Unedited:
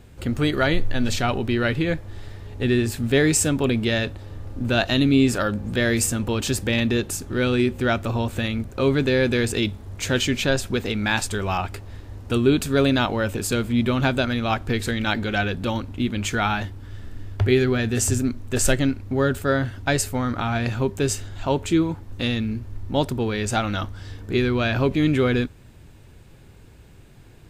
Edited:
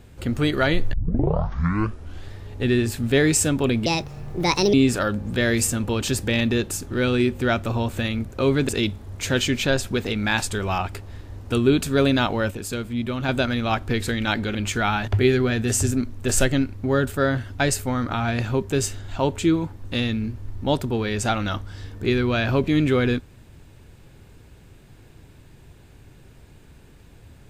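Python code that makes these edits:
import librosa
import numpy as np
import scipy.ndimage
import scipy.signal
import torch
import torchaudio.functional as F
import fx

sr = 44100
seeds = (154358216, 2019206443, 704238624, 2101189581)

y = fx.edit(x, sr, fx.tape_start(start_s=0.93, length_s=1.39),
    fx.speed_span(start_s=3.86, length_s=1.27, speed=1.45),
    fx.cut(start_s=9.08, length_s=0.4),
    fx.clip_gain(start_s=13.3, length_s=0.78, db=-5.5),
    fx.cut(start_s=15.34, length_s=0.78),
    fx.cut(start_s=16.65, length_s=0.7), tone=tone)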